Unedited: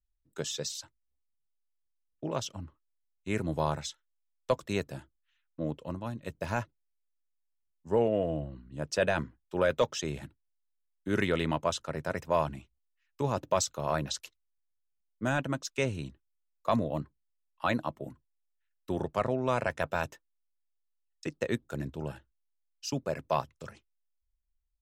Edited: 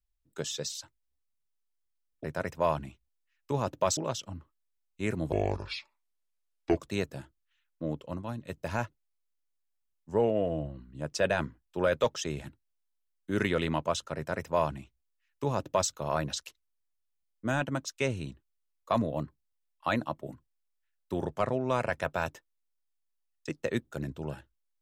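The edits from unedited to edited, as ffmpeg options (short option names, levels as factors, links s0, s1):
-filter_complex "[0:a]asplit=5[s0][s1][s2][s3][s4];[s0]atrim=end=2.242[s5];[s1]atrim=start=11.938:end=13.672[s6];[s2]atrim=start=2.238:end=3.594[s7];[s3]atrim=start=3.59:end=4.55,asetpts=PTS-STARTPTS,asetrate=29106,aresample=44100,atrim=end_sample=64145,asetpts=PTS-STARTPTS[s8];[s4]atrim=start=4.546[s9];[s5][s6]acrossfade=d=0.004:c1=hsin:c2=hsin[s10];[s10][s7]acrossfade=d=0.004:c1=hsin:c2=hsin[s11];[s11][s8]acrossfade=d=0.004:c1=hsin:c2=hsin[s12];[s12][s9]acrossfade=d=0.004:c1=hsin:c2=hsin"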